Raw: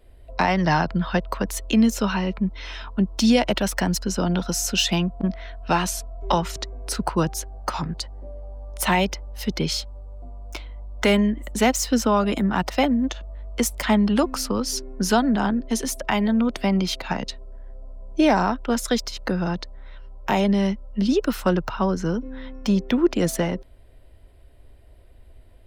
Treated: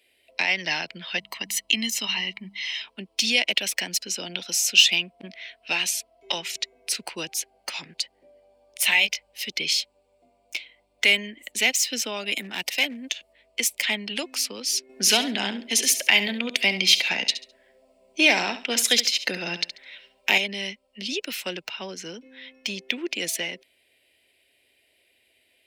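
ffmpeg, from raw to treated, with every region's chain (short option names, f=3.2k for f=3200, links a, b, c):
-filter_complex "[0:a]asettb=1/sr,asplit=3[a][b][c];[a]atrim=end=1.184[d];[b]atrim=start=1.18:end=2.82,asetpts=PTS-STARTPTS,afade=t=in:d=0.004:c=qsin,afade=t=out:st=1.636:d=0.004:c=qsin,bandreject=f=50:t=h:w=6,bandreject=f=100:t=h:w=6,bandreject=f=150:t=h:w=6,bandreject=f=200:t=h:w=6,aecho=1:1:1:0.69,atrim=end_sample=72324[e];[c]atrim=start=2.816[f];[d][e]acrossfade=d=0.004:c1=hsin:c2=qsin[g];[g][f]acrossfade=d=0.004:c1=qsin:c2=hsin,asettb=1/sr,asplit=3[h][i][j];[h]atrim=end=8.774[k];[i]atrim=start=8.77:end=9.33,asetpts=PTS-STARTPTS,afade=t=in:d=0.004:c=qsin,afade=t=out:st=0.556:d=0.004:c=qsin,equalizer=f=330:t=o:w=0.57:g=-11,asplit=2[l][m];[m]adelay=19,volume=-6dB[n];[l][n]amix=inputs=2:normalize=0,atrim=end_sample=24696[o];[j]atrim=start=9.326[p];[k][o]acrossfade=d=0.004:c1=hsin:c2=qsin[q];[q][p]acrossfade=d=0.004:c1=qsin:c2=hsin,asettb=1/sr,asplit=3[r][s][t];[r]atrim=end=12.314[u];[s]atrim=start=12.31:end=13.33,asetpts=PTS-STARTPTS,afade=t=in:d=0.004:c=qsin,afade=t=out:st=1.016:d=0.004:c=qsin,equalizer=f=13k:w=0.6:g=9,asoftclip=type=hard:threshold=-15.5dB[v];[t]atrim=start=13.326[w];[u][v]acrossfade=d=0.004:c1=hsin:c2=qsin[x];[x][w]acrossfade=d=0.004:c1=qsin:c2=hsin,asettb=1/sr,asplit=3[y][z][aa];[y]atrim=end=14.894[ab];[z]atrim=start=14.89:end=20.38,asetpts=PTS-STARTPTS,afade=t=in:d=0.004:c=qsin,afade=t=out:st=5.486:d=0.004:c=qsin,acontrast=65,aecho=1:1:69|138|207:0.251|0.0628|0.0157,atrim=end_sample=242109[ac];[aa]atrim=start=20.376[ad];[ab][ac]acrossfade=d=0.004:c1=hsin:c2=qsin[ae];[ae][ad]acrossfade=d=0.004:c1=qsin:c2=hsin,highpass=330,highshelf=f=1.7k:t=q:w=3:g=11.5,volume=-9.5dB"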